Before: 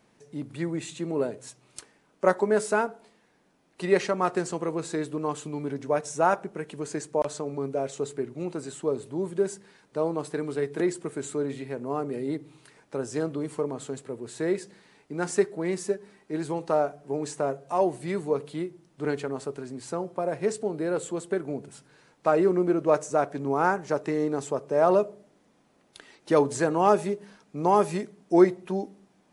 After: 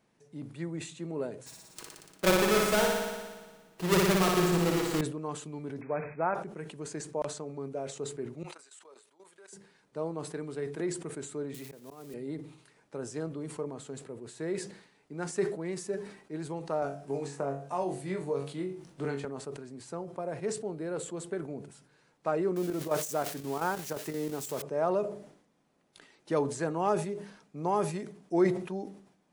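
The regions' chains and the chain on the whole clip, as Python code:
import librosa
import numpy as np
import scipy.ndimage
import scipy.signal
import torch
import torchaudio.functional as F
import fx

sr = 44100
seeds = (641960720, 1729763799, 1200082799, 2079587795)

y = fx.chain(x, sr, fx.halfwave_hold(),
    fx.comb(ms=6.2, depth=0.33),
    fx.room_flutter(wall_m=10.0, rt60_s=1.4), at=(1.46, 5.01))
y = fx.chain(y, sr, fx.crossing_spikes(level_db=-24.0),
    fx.brickwall_lowpass(high_hz=2600.0), at=(5.81, 6.35))
y = fx.chain(y, sr, fx.highpass(hz=1100.0, slope=12),
    fx.level_steps(step_db=15), at=(8.43, 9.53))
y = fx.chain(y, sr, fx.crossing_spikes(level_db=-29.5),
    fx.auto_swell(attack_ms=349.0),
    fx.band_squash(depth_pct=40), at=(11.54, 12.14))
y = fx.chain(y, sr, fx.room_flutter(wall_m=3.7, rt60_s=0.25),
    fx.band_squash(depth_pct=70), at=(16.82, 19.25))
y = fx.chain(y, sr, fx.crossing_spikes(level_db=-23.0),
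    fx.high_shelf(hz=8900.0, db=-4.0),
    fx.chopper(hz=5.7, depth_pct=65, duty_pct=80), at=(22.56, 24.62))
y = fx.peak_eq(y, sr, hz=160.0, db=4.5, octaves=0.23)
y = fx.sustainer(y, sr, db_per_s=93.0)
y = F.gain(torch.from_numpy(y), -8.0).numpy()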